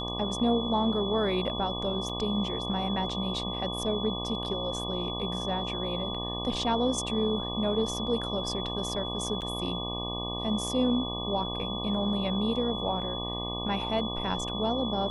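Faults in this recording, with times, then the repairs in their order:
mains buzz 60 Hz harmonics 20 −36 dBFS
whistle 3,400 Hz −35 dBFS
0:02.09–0:02.10: drop-out 5.5 ms
0:09.41–0:09.42: drop-out 7.9 ms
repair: hum removal 60 Hz, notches 20
notch filter 3,400 Hz, Q 30
repair the gap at 0:02.09, 5.5 ms
repair the gap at 0:09.41, 7.9 ms

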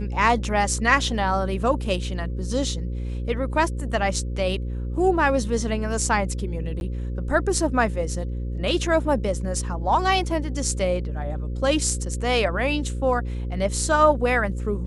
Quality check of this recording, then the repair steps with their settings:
mains buzz 60 Hz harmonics 9 −28 dBFS
0:06.80–0:06.81: drop-out 11 ms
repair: hum removal 60 Hz, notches 9
repair the gap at 0:06.80, 11 ms

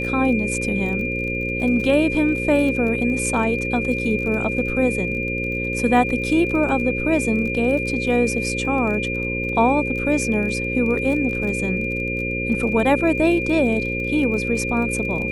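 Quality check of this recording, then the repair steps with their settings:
mains buzz 60 Hz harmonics 9 −27 dBFS
surface crackle 28 per second −29 dBFS
whistle 2,400 Hz −25 dBFS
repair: click removal
hum removal 60 Hz, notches 9
notch filter 2,400 Hz, Q 30

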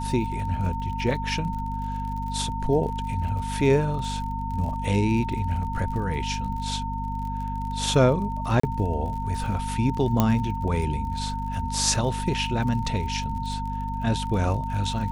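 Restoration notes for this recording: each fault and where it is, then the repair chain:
surface crackle 45 per second −34 dBFS
mains hum 50 Hz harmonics 5 −31 dBFS
whistle 910 Hz −31 dBFS
0:08.60–0:08.63: drop-out 34 ms
0:10.20: click −7 dBFS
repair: click removal
notch filter 910 Hz, Q 30
hum removal 50 Hz, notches 5
repair the gap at 0:08.60, 34 ms

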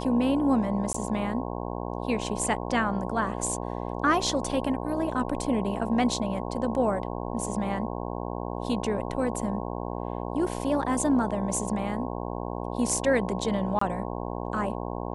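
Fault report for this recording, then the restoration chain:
mains buzz 60 Hz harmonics 18 −33 dBFS
0:00.93–0:00.94: drop-out 14 ms
0:13.79–0:13.81: drop-out 24 ms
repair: hum removal 60 Hz, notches 18
repair the gap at 0:00.93, 14 ms
repair the gap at 0:13.79, 24 ms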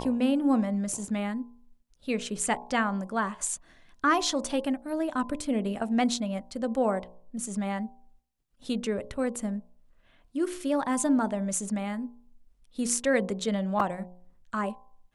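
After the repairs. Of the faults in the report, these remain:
none of them is left

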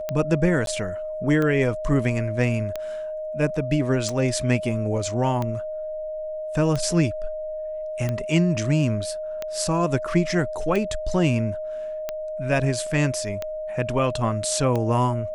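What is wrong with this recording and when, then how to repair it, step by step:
scratch tick 45 rpm −14 dBFS
whistle 620 Hz −28 dBFS
0:00.66–0:00.67: drop-out 12 ms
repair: click removal
notch filter 620 Hz, Q 30
repair the gap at 0:00.66, 12 ms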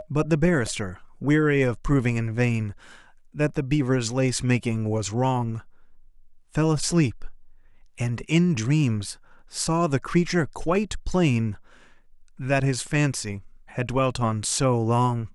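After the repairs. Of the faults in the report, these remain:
none of them is left

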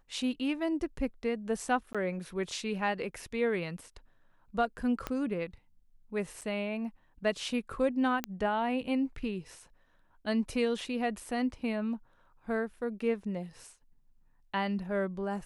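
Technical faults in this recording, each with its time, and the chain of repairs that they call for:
0:01.93–0:01.95: drop-out 16 ms
0:05.07: click −19 dBFS
0:06.41–0:06.42: drop-out 6 ms
0:08.24: click −16 dBFS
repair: click removal
repair the gap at 0:01.93, 16 ms
repair the gap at 0:06.41, 6 ms

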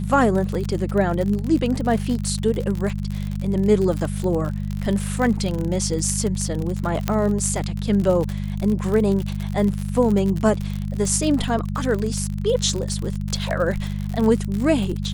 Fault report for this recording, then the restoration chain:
surface crackle 54 per second −24 dBFS
mains hum 50 Hz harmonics 4 −26 dBFS
0:07.08: click −7 dBFS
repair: click removal
hum removal 50 Hz, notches 4

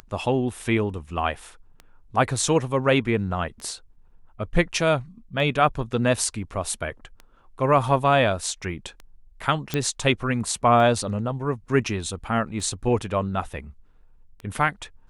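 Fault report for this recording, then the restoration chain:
scratch tick 33 1/3 rpm −24 dBFS
0:09.74: click −10 dBFS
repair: click removal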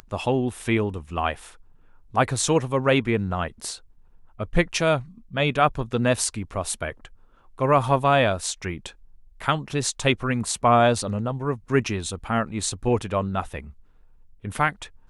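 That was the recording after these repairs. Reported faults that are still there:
none of them is left

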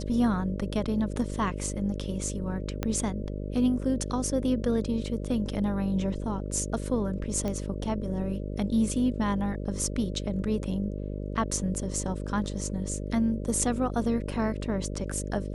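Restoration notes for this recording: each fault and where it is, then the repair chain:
mains buzz 50 Hz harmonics 12 −34 dBFS
0:02.83: click −14 dBFS
0:07.48: click −19 dBFS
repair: click removal
hum removal 50 Hz, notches 12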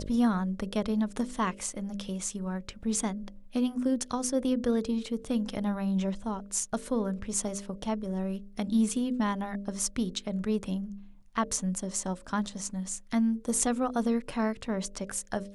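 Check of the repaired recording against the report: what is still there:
0:02.83: click

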